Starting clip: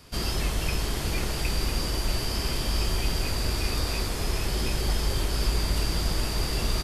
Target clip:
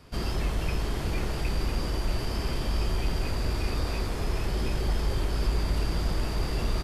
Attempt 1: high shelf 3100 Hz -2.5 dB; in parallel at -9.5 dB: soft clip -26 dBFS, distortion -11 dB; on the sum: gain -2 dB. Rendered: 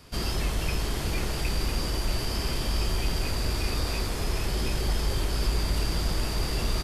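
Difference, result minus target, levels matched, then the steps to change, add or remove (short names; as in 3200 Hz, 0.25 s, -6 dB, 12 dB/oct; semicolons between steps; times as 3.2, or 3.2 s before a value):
8000 Hz band +6.0 dB
change: high shelf 3100 Hz -11 dB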